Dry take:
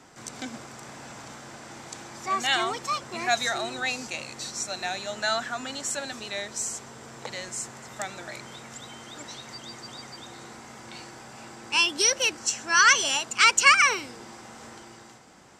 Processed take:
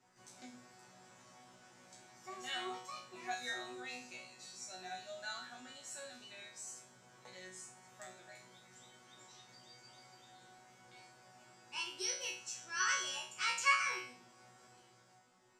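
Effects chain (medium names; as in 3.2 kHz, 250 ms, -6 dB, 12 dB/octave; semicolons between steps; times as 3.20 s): chord resonator B2 fifth, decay 0.45 s; trim -2.5 dB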